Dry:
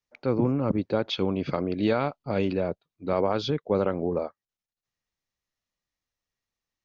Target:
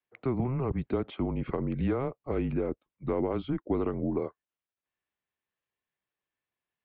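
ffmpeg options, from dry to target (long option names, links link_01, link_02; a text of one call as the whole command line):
ffmpeg -i in.wav -filter_complex "[0:a]acrossover=split=600|1700[link_01][link_02][link_03];[link_01]acompressor=threshold=-25dB:ratio=4[link_04];[link_02]acompressor=threshold=-36dB:ratio=4[link_05];[link_03]acompressor=threshold=-50dB:ratio=4[link_06];[link_04][link_05][link_06]amix=inputs=3:normalize=0,highpass=frequency=210:width_type=q:width=0.5412,highpass=frequency=210:width_type=q:width=1.307,lowpass=frequency=3400:width_type=q:width=0.5176,lowpass=frequency=3400:width_type=q:width=0.7071,lowpass=frequency=3400:width_type=q:width=1.932,afreqshift=-130,asettb=1/sr,asplit=3[link_07][link_08][link_09];[link_07]atrim=end=1.314[link_10];[link_08]atrim=start=1.31:end=3.19,asetpts=PTS-STARTPTS,afade=type=in:duration=0.004:curve=qsin,afade=type=out:start_time=1.876:duration=0.004:curve=qsin,aemphasis=mode=reproduction:type=50fm[link_11];[link_09]atrim=start=3.186[link_12];[link_10][link_11]acrossfade=duration=0.004:curve1=hsin:curve2=qsin[link_13];[link_13][link_12]acrossfade=duration=0.004:curve1=qsin:curve2=hsin" out.wav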